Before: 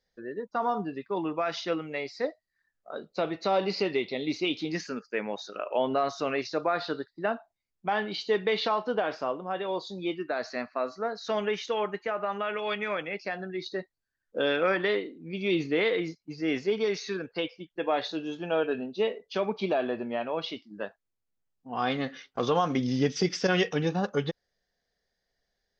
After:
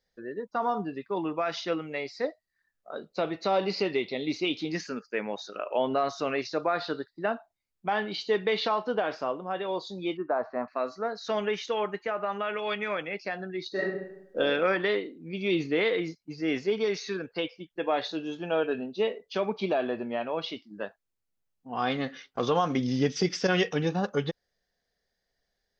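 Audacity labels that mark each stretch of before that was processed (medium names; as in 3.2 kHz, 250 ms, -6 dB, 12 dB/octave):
10.170000	10.680000	resonant low-pass 1 kHz, resonance Q 2.5
13.710000	14.380000	reverb throw, RT60 0.84 s, DRR -6.5 dB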